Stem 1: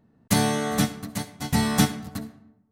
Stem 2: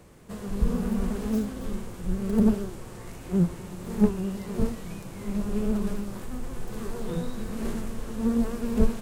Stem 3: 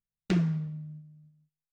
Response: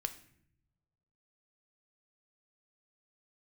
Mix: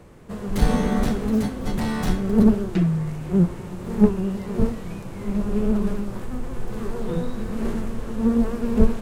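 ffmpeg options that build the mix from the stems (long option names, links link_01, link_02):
-filter_complex "[0:a]volume=23.5dB,asoftclip=hard,volume=-23.5dB,adelay=250,volume=-2dB,asplit=2[link_01][link_02];[link_02]volume=-7dB[link_03];[1:a]volume=3dB,asplit=2[link_04][link_05];[link_05]volume=-9.5dB[link_06];[2:a]aecho=1:1:6:0.97,adelay=2450,volume=0dB[link_07];[3:a]atrim=start_sample=2205[link_08];[link_03][link_06]amix=inputs=2:normalize=0[link_09];[link_09][link_08]afir=irnorm=-1:irlink=0[link_10];[link_01][link_04][link_07][link_10]amix=inputs=4:normalize=0,highshelf=frequency=3600:gain=-9"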